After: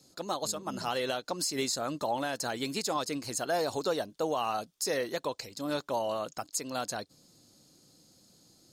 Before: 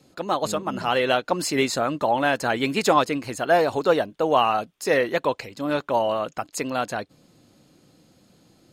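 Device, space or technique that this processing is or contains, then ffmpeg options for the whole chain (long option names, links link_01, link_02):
over-bright horn tweeter: -af "highshelf=frequency=3600:width_type=q:width=1.5:gain=10,alimiter=limit=-12.5dB:level=0:latency=1:release=188,volume=-8dB"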